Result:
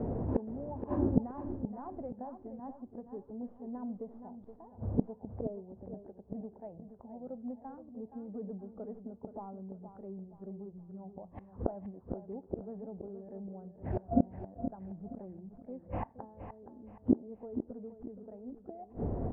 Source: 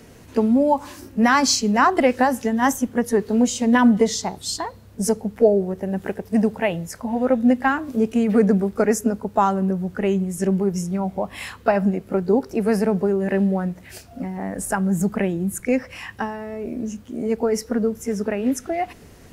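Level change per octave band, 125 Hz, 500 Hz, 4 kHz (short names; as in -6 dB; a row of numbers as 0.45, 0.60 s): -13.0 dB, -20.5 dB, under -40 dB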